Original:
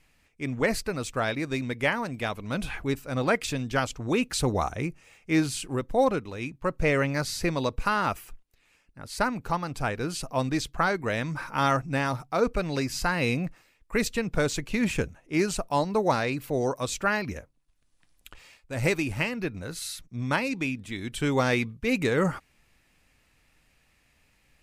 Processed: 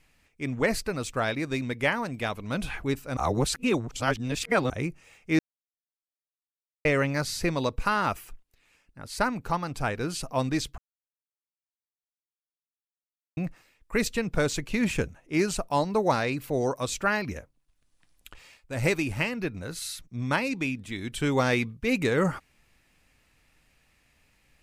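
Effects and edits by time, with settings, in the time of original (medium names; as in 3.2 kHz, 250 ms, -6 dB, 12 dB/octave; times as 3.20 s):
3.17–4.70 s: reverse
5.39–6.85 s: mute
10.78–13.37 s: mute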